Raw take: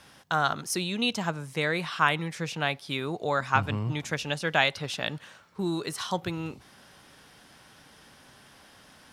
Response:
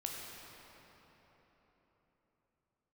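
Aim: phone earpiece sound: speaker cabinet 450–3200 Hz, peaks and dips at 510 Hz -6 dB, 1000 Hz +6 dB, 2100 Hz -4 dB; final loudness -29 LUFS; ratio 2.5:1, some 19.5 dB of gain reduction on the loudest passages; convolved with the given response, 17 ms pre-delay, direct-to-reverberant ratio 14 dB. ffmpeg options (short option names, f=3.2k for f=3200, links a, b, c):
-filter_complex "[0:a]acompressor=threshold=-48dB:ratio=2.5,asplit=2[a][b];[1:a]atrim=start_sample=2205,adelay=17[c];[b][c]afir=irnorm=-1:irlink=0,volume=-14.5dB[d];[a][d]amix=inputs=2:normalize=0,highpass=450,equalizer=f=510:t=q:w=4:g=-6,equalizer=f=1k:t=q:w=4:g=6,equalizer=f=2.1k:t=q:w=4:g=-4,lowpass=f=3.2k:w=0.5412,lowpass=f=3.2k:w=1.3066,volume=19dB"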